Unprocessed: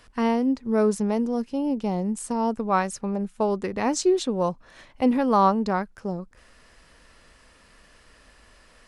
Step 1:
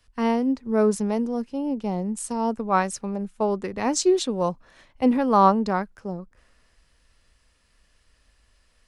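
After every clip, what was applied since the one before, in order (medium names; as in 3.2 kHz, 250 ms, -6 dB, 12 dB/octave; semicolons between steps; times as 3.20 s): three bands expanded up and down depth 40%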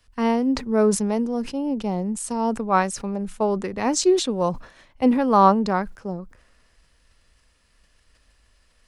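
decay stretcher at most 130 dB/s; trim +1.5 dB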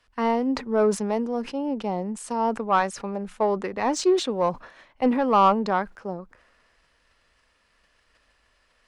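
overdrive pedal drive 15 dB, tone 1.8 kHz, clips at -2 dBFS; trim -5 dB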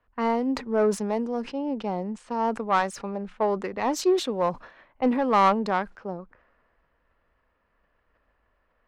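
self-modulated delay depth 0.073 ms; level-controlled noise filter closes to 1.3 kHz, open at -21.5 dBFS; trim -1.5 dB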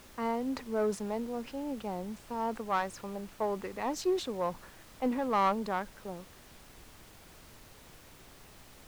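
added noise pink -46 dBFS; trim -8 dB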